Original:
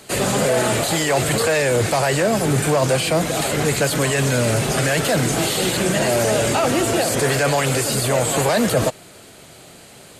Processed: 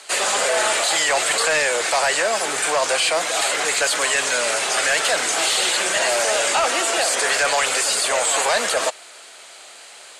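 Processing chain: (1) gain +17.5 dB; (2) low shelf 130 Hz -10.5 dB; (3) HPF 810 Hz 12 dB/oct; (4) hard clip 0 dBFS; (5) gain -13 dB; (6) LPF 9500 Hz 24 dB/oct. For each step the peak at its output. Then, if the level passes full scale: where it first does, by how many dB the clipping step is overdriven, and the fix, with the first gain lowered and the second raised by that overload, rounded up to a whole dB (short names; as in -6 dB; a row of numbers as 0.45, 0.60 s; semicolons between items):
+11.5, +10.5, +8.0, 0.0, -13.0, -10.5 dBFS; step 1, 8.0 dB; step 1 +9.5 dB, step 5 -5 dB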